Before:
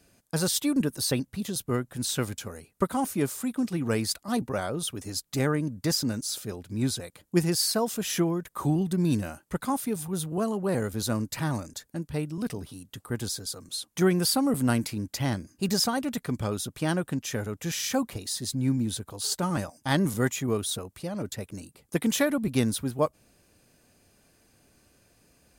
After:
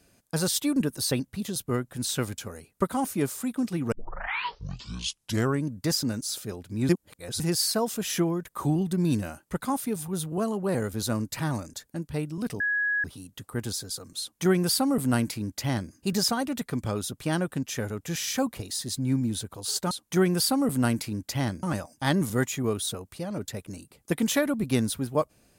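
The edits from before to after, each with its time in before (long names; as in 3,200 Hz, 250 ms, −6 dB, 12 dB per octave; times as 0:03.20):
0:03.92: tape start 1.75 s
0:06.89–0:07.40: reverse
0:12.60: insert tone 1,670 Hz −23 dBFS 0.44 s
0:13.76–0:15.48: duplicate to 0:19.47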